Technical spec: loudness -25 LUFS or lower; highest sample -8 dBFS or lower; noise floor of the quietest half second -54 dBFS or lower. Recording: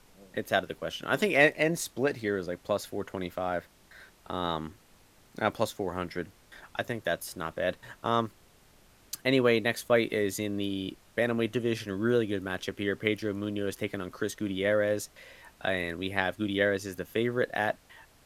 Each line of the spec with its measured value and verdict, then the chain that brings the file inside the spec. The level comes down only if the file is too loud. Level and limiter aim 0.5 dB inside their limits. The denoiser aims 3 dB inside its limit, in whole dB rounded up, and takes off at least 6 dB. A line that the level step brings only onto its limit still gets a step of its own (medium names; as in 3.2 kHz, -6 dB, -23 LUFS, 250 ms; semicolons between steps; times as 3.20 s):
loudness -30.0 LUFS: pass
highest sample -7.5 dBFS: fail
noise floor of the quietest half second -59 dBFS: pass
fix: peak limiter -8.5 dBFS